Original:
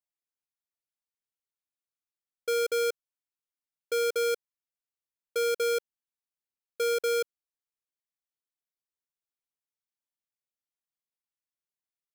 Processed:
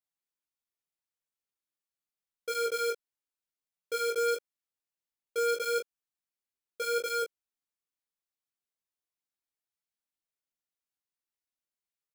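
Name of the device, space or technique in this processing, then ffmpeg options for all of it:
double-tracked vocal: -filter_complex "[0:a]asplit=2[link_01][link_02];[link_02]adelay=22,volume=-4dB[link_03];[link_01][link_03]amix=inputs=2:normalize=0,flanger=delay=15.5:depth=3.8:speed=0.83"

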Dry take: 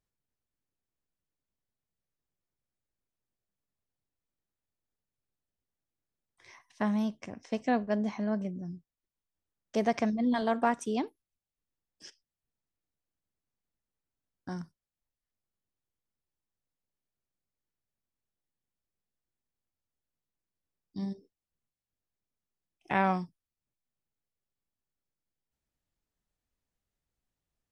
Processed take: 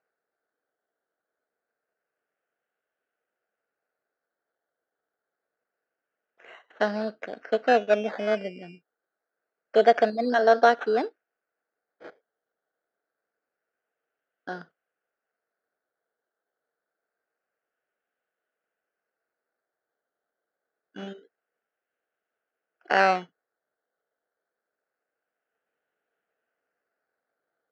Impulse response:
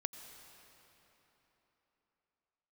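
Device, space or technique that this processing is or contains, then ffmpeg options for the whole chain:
circuit-bent sampling toy: -af "acrusher=samples=13:mix=1:aa=0.000001:lfo=1:lforange=7.8:lforate=0.26,highpass=410,equalizer=frequency=460:width_type=q:width=4:gain=8,equalizer=frequency=670:width_type=q:width=4:gain=6,equalizer=frequency=1000:width_type=q:width=4:gain=-9,equalizer=frequency=1500:width_type=q:width=4:gain=10,equalizer=frequency=2300:width_type=q:width=4:gain=-4,equalizer=frequency=3600:width_type=q:width=4:gain=-8,lowpass=frequency=4100:width=0.5412,lowpass=frequency=4100:width=1.3066,volume=7dB"

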